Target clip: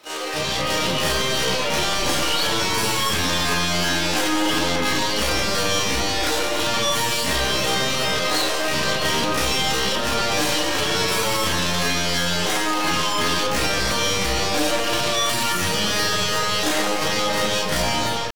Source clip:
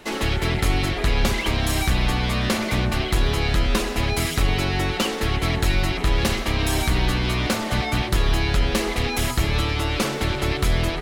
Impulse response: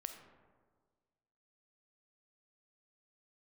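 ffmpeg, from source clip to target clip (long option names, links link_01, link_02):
-filter_complex "[0:a]acrossover=split=7800[link_01][link_02];[link_02]acompressor=threshold=-48dB:ratio=4:attack=1:release=60[link_03];[link_01][link_03]amix=inputs=2:normalize=0,highpass=frequency=350:poles=1,dynaudnorm=framelen=130:gausssize=5:maxgain=12dB,atempo=0.6,flanger=delay=4.4:depth=4.8:regen=62:speed=1.5:shape=sinusoidal,aeval=exprs='(tanh(15.8*val(0)+0.1)-tanh(0.1))/15.8':channel_layout=same,asetrate=62367,aresample=44100,atempo=0.707107,asplit=2[link_04][link_05];[1:a]atrim=start_sample=2205,adelay=33[link_06];[link_05][link_06]afir=irnorm=-1:irlink=0,volume=8dB[link_07];[link_04][link_07]amix=inputs=2:normalize=0"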